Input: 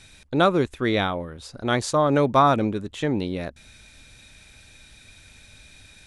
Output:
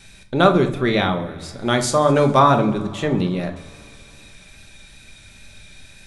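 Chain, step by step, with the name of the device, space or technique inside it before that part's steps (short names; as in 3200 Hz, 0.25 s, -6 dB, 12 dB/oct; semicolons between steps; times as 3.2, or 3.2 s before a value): multi-head tape echo (multi-head echo 68 ms, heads second and third, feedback 69%, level -23.5 dB; wow and flutter 20 cents); 1.48–2.39 high shelf 8000 Hz +9 dB; shoebox room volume 450 m³, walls furnished, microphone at 1.2 m; gain +2.5 dB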